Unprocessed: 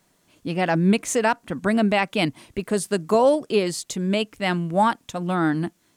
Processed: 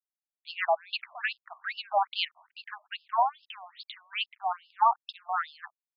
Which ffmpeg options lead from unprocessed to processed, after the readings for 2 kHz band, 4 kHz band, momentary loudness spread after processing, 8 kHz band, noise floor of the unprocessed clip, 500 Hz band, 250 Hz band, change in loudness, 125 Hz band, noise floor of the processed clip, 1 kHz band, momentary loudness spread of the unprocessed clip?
−7.0 dB, −3.5 dB, 19 LU, below −40 dB, −65 dBFS, −15.5 dB, below −40 dB, −8.5 dB, below −40 dB, below −85 dBFS, −2.5 dB, 8 LU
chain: -af "aeval=exprs='val(0)*gte(abs(val(0)),0.00531)':channel_layout=same,afftfilt=real='re*between(b*sr/1024,840*pow(3800/840,0.5+0.5*sin(2*PI*2.4*pts/sr))/1.41,840*pow(3800/840,0.5+0.5*sin(2*PI*2.4*pts/sr))*1.41)':imag='im*between(b*sr/1024,840*pow(3800/840,0.5+0.5*sin(2*PI*2.4*pts/sr))/1.41,840*pow(3800/840,0.5+0.5*sin(2*PI*2.4*pts/sr))*1.41)':win_size=1024:overlap=0.75"

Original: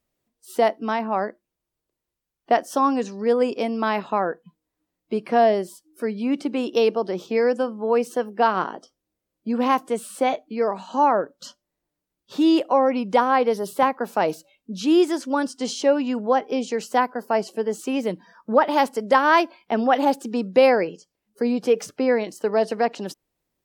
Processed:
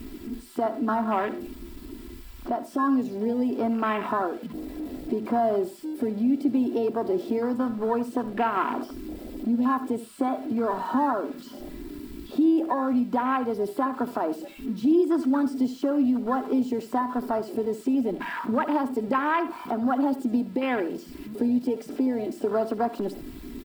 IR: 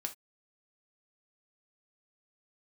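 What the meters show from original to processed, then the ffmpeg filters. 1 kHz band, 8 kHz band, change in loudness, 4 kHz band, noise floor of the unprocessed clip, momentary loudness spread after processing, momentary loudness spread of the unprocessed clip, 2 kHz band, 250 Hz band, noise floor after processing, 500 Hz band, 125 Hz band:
−6.0 dB, below −10 dB, −4.0 dB, −12.0 dB, −84 dBFS, 14 LU, 11 LU, −7.0 dB, +0.5 dB, −43 dBFS, −7.0 dB, −1.0 dB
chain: -filter_complex "[0:a]aeval=exprs='val(0)+0.5*0.0355*sgn(val(0))':channel_layout=same,equalizer=frequency=250:width_type=o:width=0.33:gain=9,equalizer=frequency=630:width_type=o:width=0.33:gain=-6,equalizer=frequency=6300:width_type=o:width=0.33:gain=-9,equalizer=frequency=10000:width_type=o:width=0.33:gain=-5,acrossover=split=2800|6900[link_01][link_02][link_03];[link_01]acompressor=threshold=-22dB:ratio=4[link_04];[link_02]acompressor=threshold=-43dB:ratio=4[link_05];[link_03]acompressor=threshold=-40dB:ratio=4[link_06];[link_04][link_05][link_06]amix=inputs=3:normalize=0,lowshelf=frequency=490:gain=-5.5,aecho=1:1:3:0.53,alimiter=limit=-17.5dB:level=0:latency=1:release=185,afwtdn=0.0251,asplit=2[link_07][link_08];[1:a]atrim=start_sample=2205,adelay=69[link_09];[link_08][link_09]afir=irnorm=-1:irlink=0,volume=-12.5dB[link_10];[link_07][link_10]amix=inputs=2:normalize=0,volume=3.5dB"

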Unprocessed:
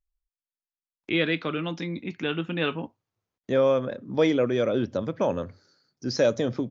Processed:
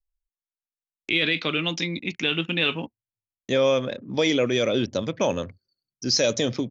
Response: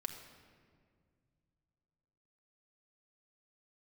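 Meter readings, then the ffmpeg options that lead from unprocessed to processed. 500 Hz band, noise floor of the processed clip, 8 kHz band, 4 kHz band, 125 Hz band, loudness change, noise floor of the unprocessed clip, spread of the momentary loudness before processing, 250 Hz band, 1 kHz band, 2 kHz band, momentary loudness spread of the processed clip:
0.0 dB, below −85 dBFS, can't be measured, +10.0 dB, +1.0 dB, +2.5 dB, below −85 dBFS, 11 LU, +0.5 dB, +0.5 dB, +5.5 dB, 11 LU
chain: -af "anlmdn=0.01,aexciter=amount=4.4:drive=3.3:freq=2100,alimiter=limit=-13dB:level=0:latency=1:release=16,volume=1.5dB"

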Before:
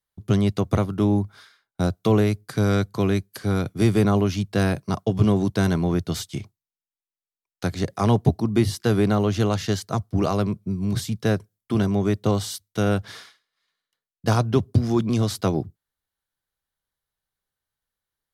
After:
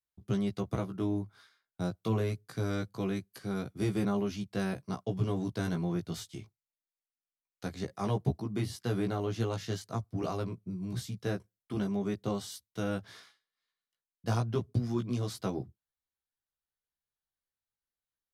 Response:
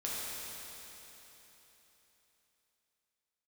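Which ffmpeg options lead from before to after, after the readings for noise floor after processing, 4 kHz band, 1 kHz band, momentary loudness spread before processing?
below −85 dBFS, −11.5 dB, −11.5 dB, 7 LU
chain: -af "flanger=delay=15:depth=2.4:speed=0.25,volume=-8.5dB"

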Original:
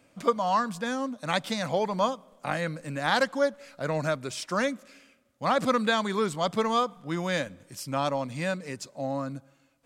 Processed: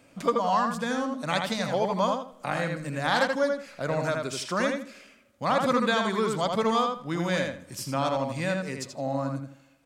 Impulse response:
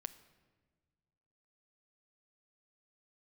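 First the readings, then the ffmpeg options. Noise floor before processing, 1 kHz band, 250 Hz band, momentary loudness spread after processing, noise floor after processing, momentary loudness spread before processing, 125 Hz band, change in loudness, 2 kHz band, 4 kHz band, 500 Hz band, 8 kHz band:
−65 dBFS, +1.0 dB, +1.5 dB, 9 LU, −58 dBFS, 10 LU, +2.0 dB, +1.0 dB, +1.0 dB, +0.5 dB, +1.0 dB, +1.0 dB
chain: -filter_complex "[0:a]asplit=2[link_01][link_02];[link_02]acompressor=threshold=-38dB:ratio=6,volume=-0.5dB[link_03];[link_01][link_03]amix=inputs=2:normalize=0,asplit=2[link_04][link_05];[link_05]adelay=81,lowpass=frequency=4000:poles=1,volume=-3.5dB,asplit=2[link_06][link_07];[link_07]adelay=81,lowpass=frequency=4000:poles=1,volume=0.25,asplit=2[link_08][link_09];[link_09]adelay=81,lowpass=frequency=4000:poles=1,volume=0.25,asplit=2[link_10][link_11];[link_11]adelay=81,lowpass=frequency=4000:poles=1,volume=0.25[link_12];[link_04][link_06][link_08][link_10][link_12]amix=inputs=5:normalize=0,volume=-2dB"

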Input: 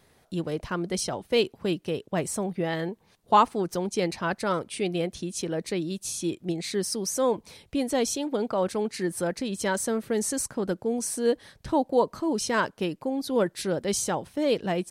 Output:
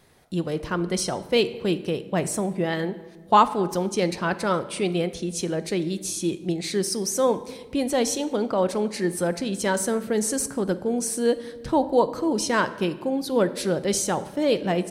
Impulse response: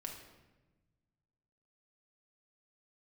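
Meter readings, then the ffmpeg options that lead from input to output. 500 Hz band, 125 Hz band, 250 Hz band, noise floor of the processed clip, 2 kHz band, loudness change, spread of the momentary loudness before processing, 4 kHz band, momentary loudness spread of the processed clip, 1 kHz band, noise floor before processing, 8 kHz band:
+3.0 dB, +4.0 dB, +3.5 dB, −43 dBFS, +3.0 dB, +3.0 dB, 6 LU, +3.0 dB, 6 LU, +3.0 dB, −63 dBFS, +3.0 dB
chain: -filter_complex "[0:a]asplit=2[link_01][link_02];[1:a]atrim=start_sample=2205,asetrate=39249,aresample=44100[link_03];[link_02][link_03]afir=irnorm=-1:irlink=0,volume=-4dB[link_04];[link_01][link_04]amix=inputs=2:normalize=0"

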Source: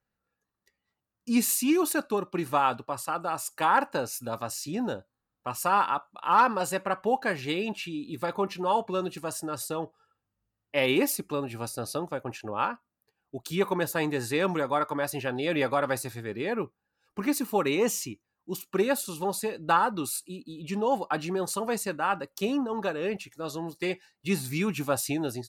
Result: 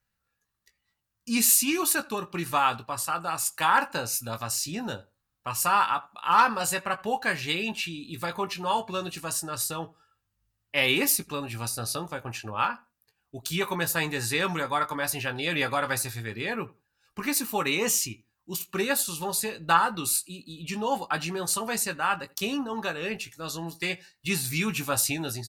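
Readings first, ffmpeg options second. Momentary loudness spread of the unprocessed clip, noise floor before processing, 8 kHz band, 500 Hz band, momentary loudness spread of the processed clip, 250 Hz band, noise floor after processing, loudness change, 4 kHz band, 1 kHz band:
11 LU, −85 dBFS, +7.5 dB, −4.0 dB, 12 LU, −3.0 dB, −81 dBFS, +1.5 dB, +6.5 dB, +0.5 dB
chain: -filter_complex "[0:a]equalizer=frequency=410:width=0.42:gain=-12.5,asplit=2[link_01][link_02];[link_02]adelay=18,volume=-8.5dB[link_03];[link_01][link_03]amix=inputs=2:normalize=0,asplit=2[link_04][link_05];[link_05]adelay=84,lowpass=frequency=2000:poles=1,volume=-22dB,asplit=2[link_06][link_07];[link_07]adelay=84,lowpass=frequency=2000:poles=1,volume=0.18[link_08];[link_06][link_08]amix=inputs=2:normalize=0[link_09];[link_04][link_09]amix=inputs=2:normalize=0,volume=7dB"

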